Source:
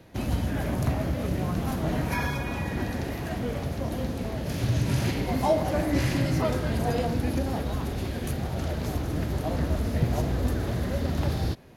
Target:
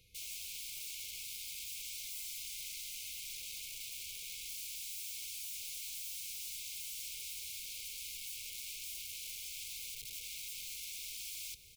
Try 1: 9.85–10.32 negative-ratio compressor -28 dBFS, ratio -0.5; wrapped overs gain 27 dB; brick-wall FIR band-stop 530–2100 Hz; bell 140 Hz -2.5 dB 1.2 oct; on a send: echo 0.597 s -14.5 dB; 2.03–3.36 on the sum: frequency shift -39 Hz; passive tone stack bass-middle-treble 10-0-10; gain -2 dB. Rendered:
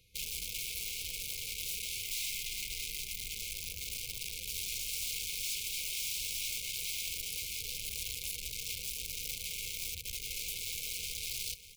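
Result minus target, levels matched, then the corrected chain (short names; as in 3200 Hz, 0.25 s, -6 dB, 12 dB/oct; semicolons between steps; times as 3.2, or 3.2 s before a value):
wrapped overs: distortion -32 dB
9.85–10.32 negative-ratio compressor -28 dBFS, ratio -0.5; wrapped overs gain 36 dB; brick-wall FIR band-stop 530–2100 Hz; bell 140 Hz -2.5 dB 1.2 oct; on a send: echo 0.597 s -14.5 dB; 2.03–3.36 on the sum: frequency shift -39 Hz; passive tone stack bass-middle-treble 10-0-10; gain -2 dB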